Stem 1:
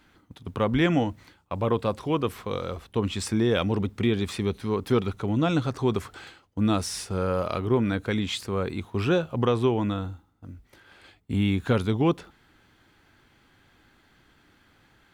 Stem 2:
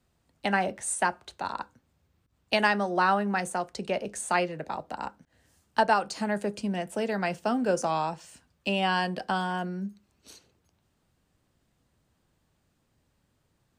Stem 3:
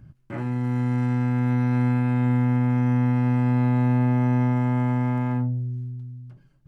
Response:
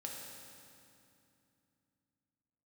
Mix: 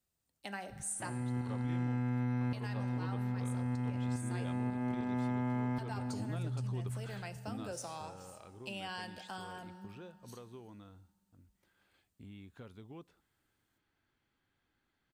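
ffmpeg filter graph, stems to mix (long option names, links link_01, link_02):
-filter_complex "[0:a]acompressor=threshold=-32dB:ratio=2,adelay=900,volume=-9.5dB,afade=type=out:start_time=7.26:duration=0.65:silence=0.266073[link_01];[1:a]aemphasis=mode=production:type=75kf,volume=-20dB,asplit=3[link_02][link_03][link_04];[link_03]volume=-6dB[link_05];[2:a]adelay=700,volume=1.5dB,asplit=2[link_06][link_07];[link_07]volume=-18.5dB[link_08];[link_04]apad=whole_len=325338[link_09];[link_06][link_09]sidechaincompress=threshold=-52dB:ratio=8:attack=5.8:release=320[link_10];[3:a]atrim=start_sample=2205[link_11];[link_05][link_08]amix=inputs=2:normalize=0[link_12];[link_12][link_11]afir=irnorm=-1:irlink=0[link_13];[link_01][link_02][link_10][link_13]amix=inputs=4:normalize=0,acompressor=threshold=-36dB:ratio=3"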